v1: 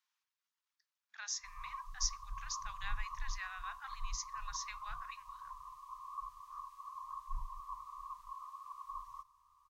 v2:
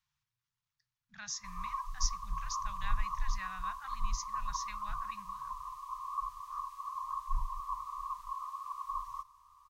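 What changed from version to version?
speech: remove high-pass filter 720 Hz 24 dB per octave
background +7.5 dB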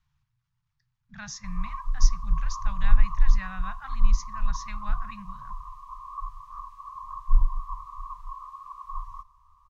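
speech +7.5 dB
master: add spectral tilt −3 dB per octave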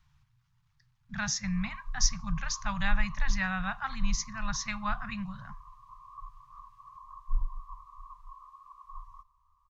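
speech +7.5 dB
background −10.0 dB

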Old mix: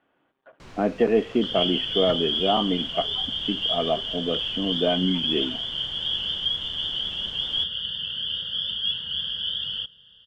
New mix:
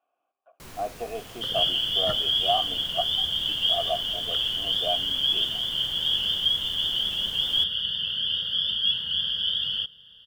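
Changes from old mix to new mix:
speech: add formant filter a
master: remove high-frequency loss of the air 110 metres

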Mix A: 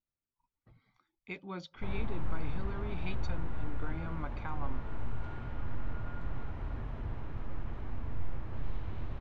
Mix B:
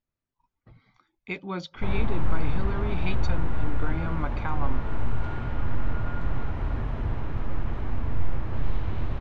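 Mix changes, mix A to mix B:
speech +9.0 dB
background +10.0 dB

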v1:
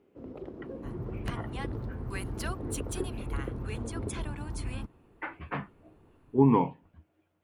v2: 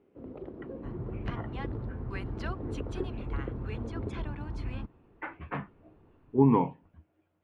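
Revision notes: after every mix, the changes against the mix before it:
master: add high-frequency loss of the air 220 metres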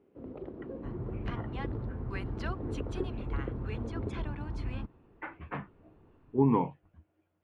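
reverb: off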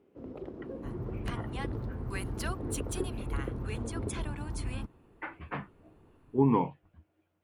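master: remove high-frequency loss of the air 220 metres

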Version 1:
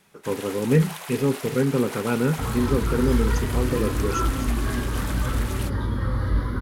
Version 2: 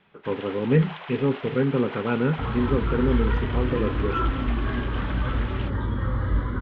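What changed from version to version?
master: add Chebyshev low-pass filter 3,300 Hz, order 4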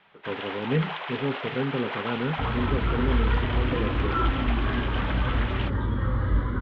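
speech −5.5 dB
first sound +5.0 dB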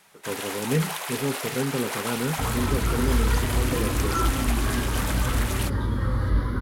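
master: remove Chebyshev low-pass filter 3,300 Hz, order 4

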